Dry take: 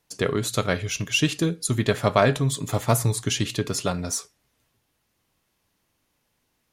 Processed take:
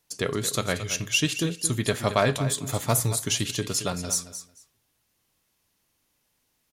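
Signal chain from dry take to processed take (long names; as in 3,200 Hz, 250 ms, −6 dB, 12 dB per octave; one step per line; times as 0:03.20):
high-shelf EQ 3,500 Hz +7.5 dB
on a send: repeating echo 223 ms, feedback 17%, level −12 dB
on the sum: level −4 dB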